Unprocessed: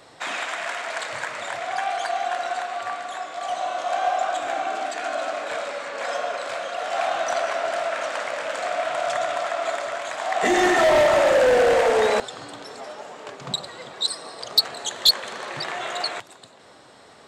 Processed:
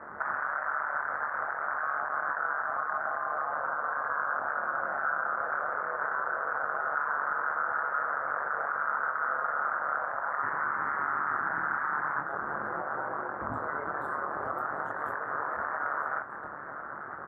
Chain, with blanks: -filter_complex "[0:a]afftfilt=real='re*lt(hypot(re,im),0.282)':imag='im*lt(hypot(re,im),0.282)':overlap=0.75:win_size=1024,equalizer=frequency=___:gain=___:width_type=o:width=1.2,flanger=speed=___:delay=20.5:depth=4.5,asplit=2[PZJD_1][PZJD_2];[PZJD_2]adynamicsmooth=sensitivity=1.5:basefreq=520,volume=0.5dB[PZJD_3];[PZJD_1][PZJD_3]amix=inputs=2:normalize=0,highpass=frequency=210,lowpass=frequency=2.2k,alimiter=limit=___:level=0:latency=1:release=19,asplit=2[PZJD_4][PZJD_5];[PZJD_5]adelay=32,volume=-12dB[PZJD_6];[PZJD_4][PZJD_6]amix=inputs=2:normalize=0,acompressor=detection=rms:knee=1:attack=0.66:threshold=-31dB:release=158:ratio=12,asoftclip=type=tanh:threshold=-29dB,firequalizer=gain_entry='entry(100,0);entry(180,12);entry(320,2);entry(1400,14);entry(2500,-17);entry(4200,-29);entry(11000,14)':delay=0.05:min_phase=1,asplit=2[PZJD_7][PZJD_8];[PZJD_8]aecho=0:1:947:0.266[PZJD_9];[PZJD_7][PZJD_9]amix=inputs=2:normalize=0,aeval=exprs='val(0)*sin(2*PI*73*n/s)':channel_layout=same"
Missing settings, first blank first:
1.5k, 10.5, 0.46, -13dB